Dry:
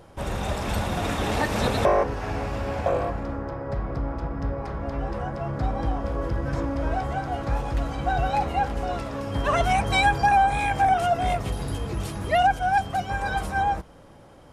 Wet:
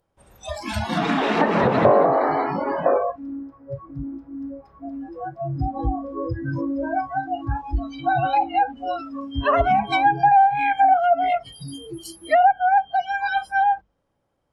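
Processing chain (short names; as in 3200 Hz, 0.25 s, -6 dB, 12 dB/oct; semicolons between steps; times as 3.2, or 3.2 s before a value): notches 50/100/150/200/250/300/350 Hz; 0.7–2.99 frequency-shifting echo 0.192 s, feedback 56%, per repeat +93 Hz, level -4.5 dB; spectral noise reduction 29 dB; treble ducked by the level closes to 1100 Hz, closed at -18 dBFS; gain +5.5 dB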